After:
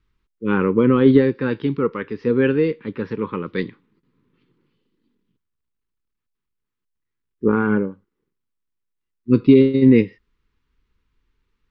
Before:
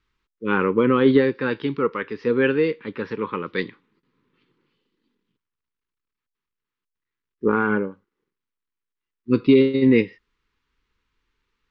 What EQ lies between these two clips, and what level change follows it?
low shelf 350 Hz +11 dB; -3.0 dB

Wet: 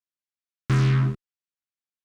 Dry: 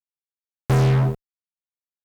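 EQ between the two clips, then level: Bessel low-pass 5900 Hz, order 2; low shelf 85 Hz -8.5 dB; band shelf 620 Hz -15.5 dB 1.3 oct; 0.0 dB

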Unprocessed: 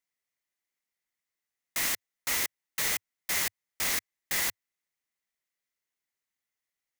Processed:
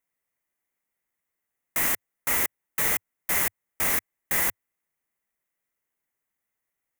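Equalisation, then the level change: bell 4400 Hz -15 dB 1.3 oct; +7.5 dB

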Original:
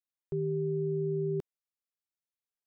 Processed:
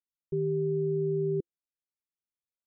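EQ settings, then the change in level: EQ curve 340 Hz 0 dB, 510 Hz -4 dB, 750 Hz -20 dB; dynamic EQ 320 Hz, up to +8 dB, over -47 dBFS, Q 0.7; air absorption 360 m; -2.0 dB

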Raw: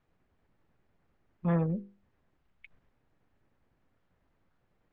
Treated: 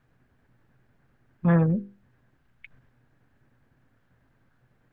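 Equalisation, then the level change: thirty-one-band EQ 125 Hz +12 dB, 250 Hz +6 dB, 1600 Hz +8 dB; +5.5 dB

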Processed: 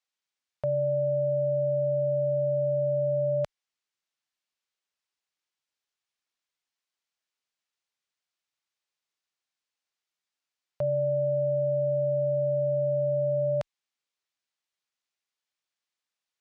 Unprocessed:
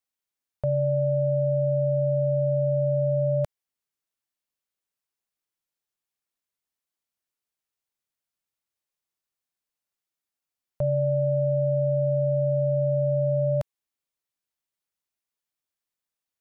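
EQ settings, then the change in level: air absorption 120 m; tilt +3 dB/oct; +1.5 dB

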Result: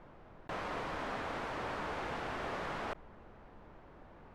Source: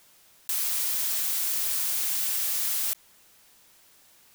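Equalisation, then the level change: LPF 1200 Hz 12 dB/oct; tilt -4 dB/oct; low shelf 340 Hz -9 dB; +12.5 dB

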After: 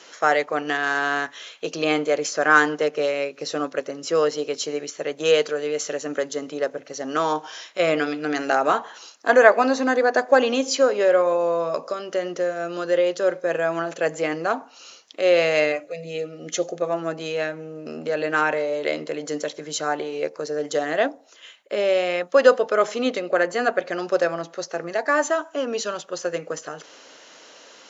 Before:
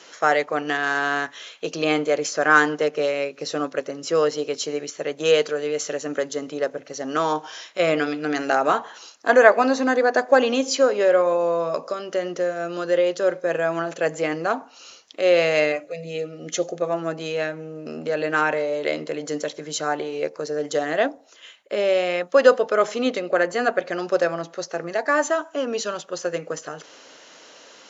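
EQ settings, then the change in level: low shelf 90 Hz -8.5 dB; 0.0 dB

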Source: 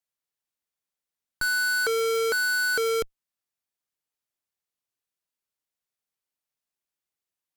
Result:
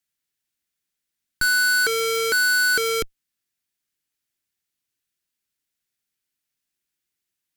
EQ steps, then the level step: band shelf 740 Hz -8.5 dB; +7.0 dB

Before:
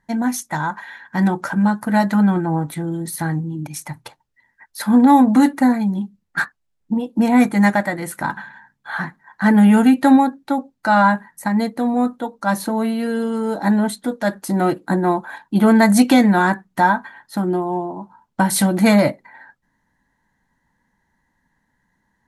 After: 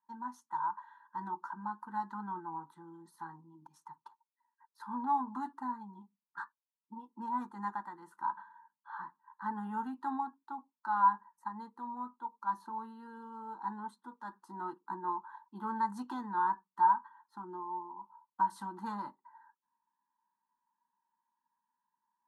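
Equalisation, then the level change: double band-pass 540 Hz, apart 1.6 oct; tilt shelf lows -8.5 dB, about 630 Hz; fixed phaser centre 450 Hz, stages 8; -8.5 dB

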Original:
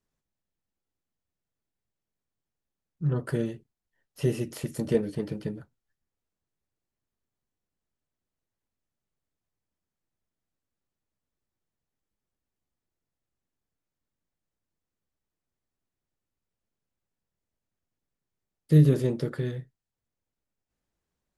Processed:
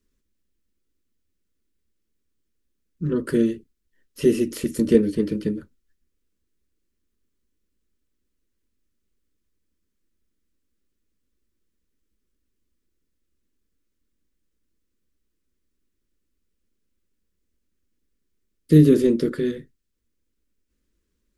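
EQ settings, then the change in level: low shelf 340 Hz +8.5 dB; fixed phaser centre 310 Hz, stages 4; +7.0 dB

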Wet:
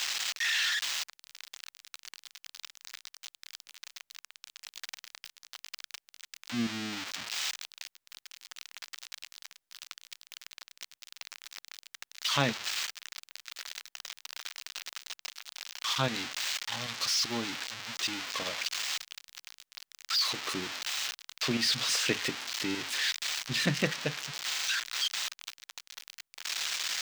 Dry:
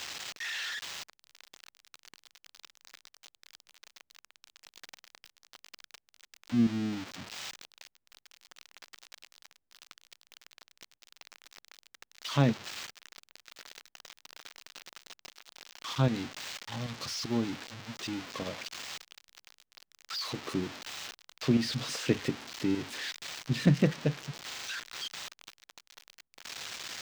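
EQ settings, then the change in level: tilt shelf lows -9 dB, about 650 Hz; 0.0 dB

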